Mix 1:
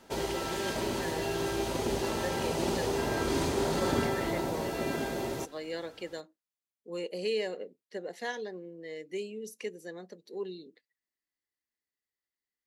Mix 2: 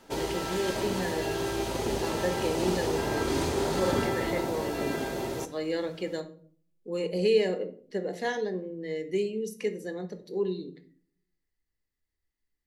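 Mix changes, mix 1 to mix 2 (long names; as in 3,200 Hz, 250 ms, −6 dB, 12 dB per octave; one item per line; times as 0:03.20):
speech: remove high-pass filter 490 Hz 6 dB per octave
reverb: on, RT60 0.50 s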